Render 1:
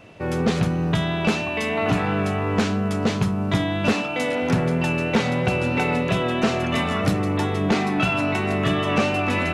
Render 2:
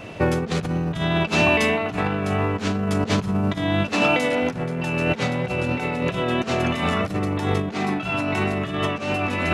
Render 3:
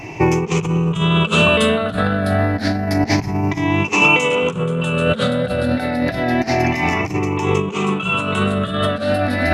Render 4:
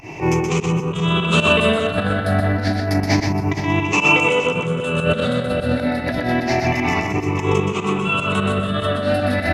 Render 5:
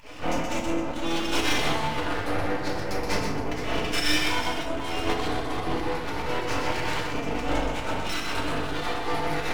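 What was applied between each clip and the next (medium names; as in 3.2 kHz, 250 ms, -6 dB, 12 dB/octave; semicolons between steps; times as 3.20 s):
compressor with a negative ratio -26 dBFS, ratio -0.5; trim +4.5 dB
drifting ripple filter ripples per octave 0.73, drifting +0.29 Hz, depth 16 dB; trim +2.5 dB
volume shaper 150 bpm, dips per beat 2, -16 dB, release 119 ms; on a send: multi-tap echo 124/469 ms -5/-13 dB; on the sum: trim -1 dB
full-wave rectifier; FDN reverb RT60 0.76 s, low-frequency decay 1.05×, high-frequency decay 0.6×, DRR -1 dB; trim -9 dB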